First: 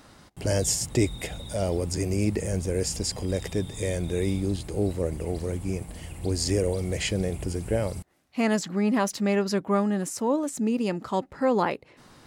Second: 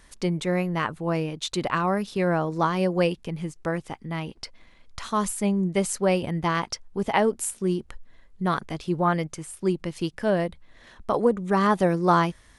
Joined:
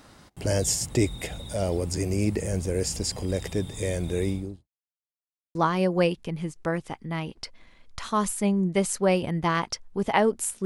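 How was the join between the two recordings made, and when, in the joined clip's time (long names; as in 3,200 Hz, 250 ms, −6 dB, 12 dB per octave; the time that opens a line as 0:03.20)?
first
0:04.19–0:04.68: fade out and dull
0:04.68–0:05.55: silence
0:05.55: continue with second from 0:02.55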